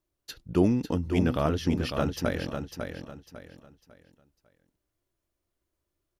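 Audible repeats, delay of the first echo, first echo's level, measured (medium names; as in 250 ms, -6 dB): 3, 550 ms, -6.5 dB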